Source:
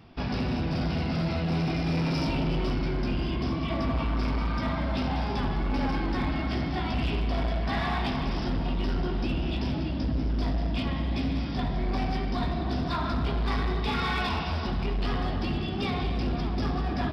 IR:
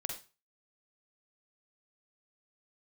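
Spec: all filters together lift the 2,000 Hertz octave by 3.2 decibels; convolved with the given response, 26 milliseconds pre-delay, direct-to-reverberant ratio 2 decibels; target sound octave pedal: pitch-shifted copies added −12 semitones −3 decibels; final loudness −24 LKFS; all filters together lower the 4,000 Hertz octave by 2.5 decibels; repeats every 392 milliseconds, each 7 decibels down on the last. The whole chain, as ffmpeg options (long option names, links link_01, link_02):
-filter_complex "[0:a]equalizer=frequency=2000:width_type=o:gain=5.5,equalizer=frequency=4000:width_type=o:gain=-5.5,aecho=1:1:392|784|1176|1568|1960:0.447|0.201|0.0905|0.0407|0.0183,asplit=2[link_01][link_02];[1:a]atrim=start_sample=2205,adelay=26[link_03];[link_02][link_03]afir=irnorm=-1:irlink=0,volume=-2.5dB[link_04];[link_01][link_04]amix=inputs=2:normalize=0,asplit=2[link_05][link_06];[link_06]asetrate=22050,aresample=44100,atempo=2,volume=-3dB[link_07];[link_05][link_07]amix=inputs=2:normalize=0,volume=1.5dB"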